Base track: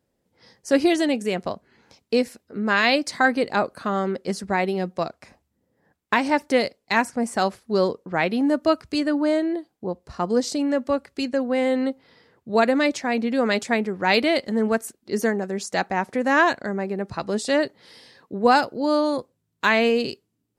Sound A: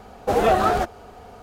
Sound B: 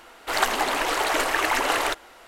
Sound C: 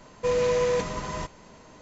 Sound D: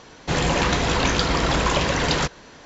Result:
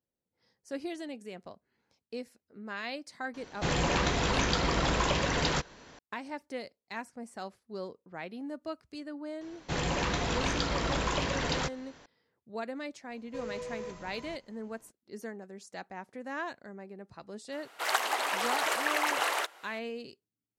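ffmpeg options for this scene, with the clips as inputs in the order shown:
ffmpeg -i bed.wav -i cue0.wav -i cue1.wav -i cue2.wav -i cue3.wav -filter_complex "[4:a]asplit=2[link_01][link_02];[0:a]volume=-19dB[link_03];[2:a]highpass=510[link_04];[link_01]atrim=end=2.65,asetpts=PTS-STARTPTS,volume=-7.5dB,afade=type=in:duration=0.004:curve=hsin,afade=type=out:start_time=2.646:duration=0.004:curve=hsin,adelay=3340[link_05];[link_02]atrim=end=2.65,asetpts=PTS-STARTPTS,volume=-10dB,afade=type=in:duration=0.004:curve=hsin,afade=type=out:start_time=2.646:duration=0.004:curve=hsin,adelay=9410[link_06];[3:a]atrim=end=1.81,asetpts=PTS-STARTPTS,volume=-16.5dB,afade=type=in:duration=0.004:curve=hsin,afade=type=out:start_time=1.806:duration=0.004:curve=hsin,adelay=13100[link_07];[link_04]atrim=end=2.27,asetpts=PTS-STARTPTS,volume=-6dB,afade=type=in:duration=0.004:curve=hsin,afade=type=out:start_time=2.266:duration=0.004:curve=hsin,adelay=17520[link_08];[link_03][link_05][link_06][link_07][link_08]amix=inputs=5:normalize=0" out.wav

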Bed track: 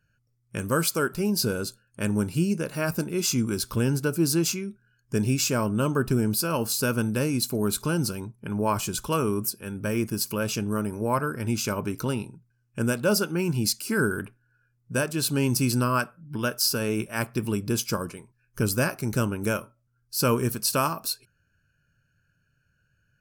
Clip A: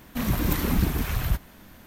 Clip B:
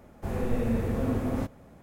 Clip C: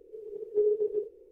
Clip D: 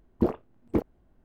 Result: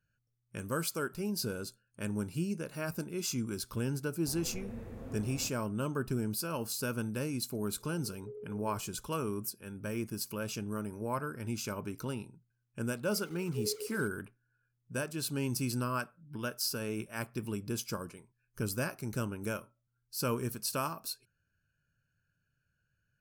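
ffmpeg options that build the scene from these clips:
ffmpeg -i bed.wav -i cue0.wav -i cue1.wav -i cue2.wav -filter_complex "[3:a]asplit=2[link_01][link_02];[0:a]volume=-10dB[link_03];[link_01]acompressor=threshold=-30dB:ratio=6:attack=3.2:release=140:knee=1:detection=peak[link_04];[link_02]acrusher=bits=6:mix=0:aa=0.000001[link_05];[2:a]atrim=end=1.82,asetpts=PTS-STARTPTS,volume=-16.5dB,afade=type=in:duration=0.004:curve=hsin,afade=type=out:start_time=1.816:duration=0.004:curve=hsin,adelay=4030[link_06];[link_04]atrim=end=1.31,asetpts=PTS-STARTPTS,volume=-13.5dB,afade=type=in:duration=0.004:curve=hsin,afade=type=out:start_time=1.306:duration=0.004:curve=hsin,adelay=7710[link_07];[link_05]atrim=end=1.31,asetpts=PTS-STARTPTS,volume=-13dB,afade=type=in:duration=0.004:curve=hsin,afade=type=out:start_time=1.306:duration=0.004:curve=hsin,adelay=573300S[link_08];[link_03][link_06][link_07][link_08]amix=inputs=4:normalize=0" out.wav

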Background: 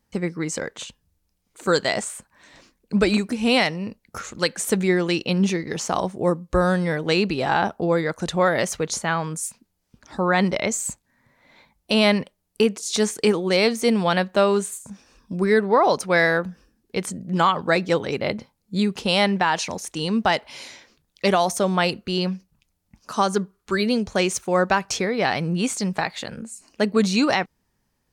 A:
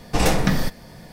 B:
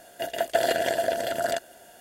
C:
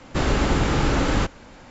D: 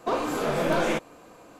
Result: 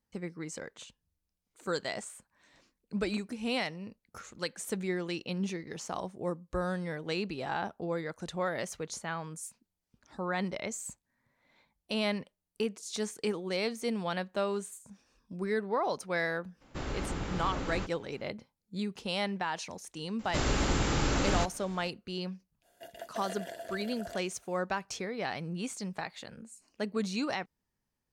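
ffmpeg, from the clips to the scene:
ffmpeg -i bed.wav -i cue0.wav -i cue1.wav -i cue2.wav -filter_complex "[3:a]asplit=2[link_01][link_02];[0:a]volume=-13.5dB[link_03];[link_02]aemphasis=mode=production:type=50kf[link_04];[link_01]atrim=end=1.7,asetpts=PTS-STARTPTS,volume=-15.5dB,afade=type=in:duration=0.02,afade=type=out:start_time=1.68:duration=0.02,adelay=16600[link_05];[link_04]atrim=end=1.7,asetpts=PTS-STARTPTS,volume=-8.5dB,afade=type=in:duration=0.004:curve=hsin,afade=type=out:start_time=1.696:duration=0.004:curve=hsin,adelay=20190[link_06];[2:a]atrim=end=2,asetpts=PTS-STARTPTS,volume=-17.5dB,afade=type=in:duration=0.05,afade=type=out:start_time=1.95:duration=0.05,adelay=22610[link_07];[link_03][link_05][link_06][link_07]amix=inputs=4:normalize=0" out.wav

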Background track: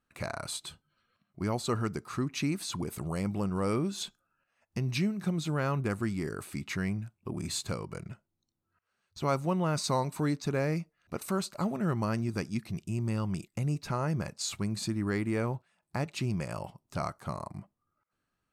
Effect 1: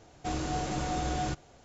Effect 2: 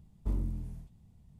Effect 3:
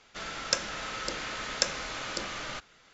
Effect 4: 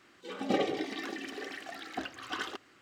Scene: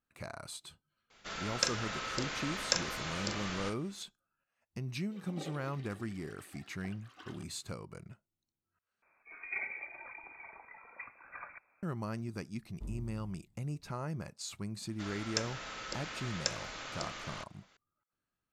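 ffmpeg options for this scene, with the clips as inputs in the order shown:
ffmpeg -i bed.wav -i cue0.wav -i cue1.wav -i cue2.wav -i cue3.wav -filter_complex "[3:a]asplit=2[link_01][link_02];[4:a]asplit=2[link_03][link_04];[0:a]volume=-8dB[link_05];[link_01]asplit=2[link_06][link_07];[link_07]adelay=40,volume=-7.5dB[link_08];[link_06][link_08]amix=inputs=2:normalize=0[link_09];[link_04]lowpass=frequency=2300:width_type=q:width=0.5098,lowpass=frequency=2300:width_type=q:width=0.6013,lowpass=frequency=2300:width_type=q:width=0.9,lowpass=frequency=2300:width_type=q:width=2.563,afreqshift=-2700[link_10];[link_05]asplit=2[link_11][link_12];[link_11]atrim=end=9.024[link_13];[link_10]atrim=end=2.81,asetpts=PTS-STARTPTS,volume=-9.5dB[link_14];[link_12]atrim=start=11.826[link_15];[link_09]atrim=end=2.93,asetpts=PTS-STARTPTS,volume=-3.5dB,afade=type=in:duration=0.004:curve=hsin,afade=type=out:start_time=2.926:duration=0.004:curve=hsin,adelay=1100[link_16];[link_03]atrim=end=2.81,asetpts=PTS-STARTPTS,volume=-16.5dB,afade=type=in:duration=0.004:curve=hsin,afade=type=out:start_time=2.806:duration=0.004:curve=hsin,adelay=4870[link_17];[2:a]atrim=end=1.39,asetpts=PTS-STARTPTS,volume=-11.5dB,afade=type=in:duration=0.004:curve=hsin,afade=type=out:start_time=1.386:duration=0.004:curve=hsin,adelay=12550[link_18];[link_02]atrim=end=2.93,asetpts=PTS-STARTPTS,volume=-7dB,afade=type=in:duration=0.004:curve=hsin,afade=type=out:start_time=2.926:duration=0.004:curve=hsin,adelay=14840[link_19];[link_13][link_14]acrossfade=duration=0.004:curve1=hsin:curve2=hsin[link_20];[link_20][link_15]acrossfade=duration=0.004:curve1=hsin:curve2=hsin[link_21];[link_21][link_16][link_17][link_18][link_19]amix=inputs=5:normalize=0" out.wav

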